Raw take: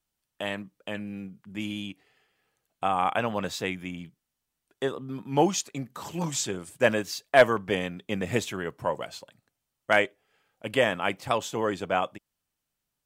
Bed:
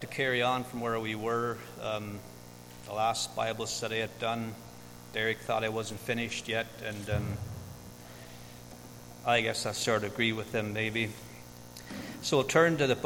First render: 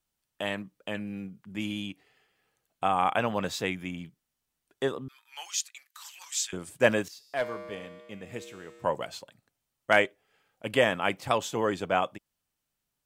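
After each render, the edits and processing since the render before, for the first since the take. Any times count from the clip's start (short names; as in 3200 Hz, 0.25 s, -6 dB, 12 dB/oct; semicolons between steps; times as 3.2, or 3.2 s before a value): 5.08–6.53 Bessel high-pass 2100 Hz, order 4; 7.08–8.84 resonator 68 Hz, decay 2 s, harmonics odd, mix 80%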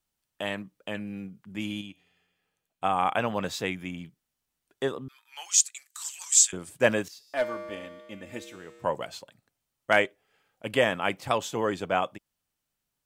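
1.81–2.84 resonator 88 Hz, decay 1.6 s, mix 50%; 5.51–6.52 bell 7800 Hz +15 dB 0.83 oct; 7.27–8.56 comb 3.4 ms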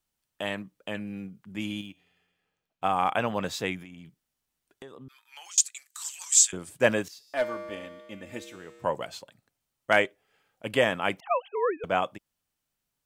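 1.8–3.11 median filter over 5 samples; 3.82–5.58 compressor 12:1, threshold -41 dBFS; 11.2–11.84 sine-wave speech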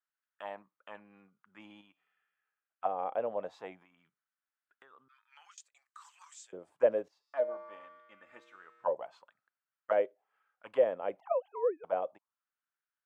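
auto-wah 530–1500 Hz, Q 3.6, down, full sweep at -23 dBFS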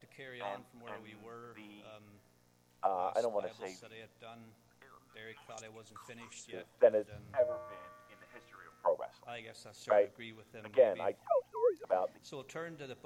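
add bed -20 dB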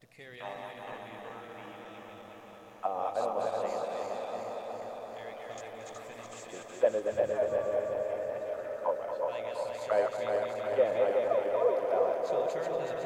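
regenerating reverse delay 0.185 s, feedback 80%, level -3 dB; tape echo 0.232 s, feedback 89%, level -8 dB, low-pass 3200 Hz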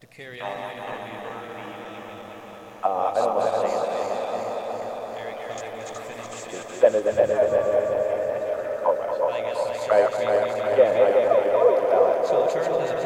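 gain +9.5 dB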